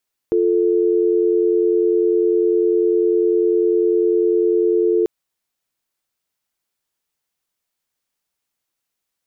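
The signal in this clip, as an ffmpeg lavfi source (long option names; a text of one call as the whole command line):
ffmpeg -f lavfi -i "aevalsrc='0.158*(sin(2*PI*350*t)+sin(2*PI*440*t))':duration=4.74:sample_rate=44100" out.wav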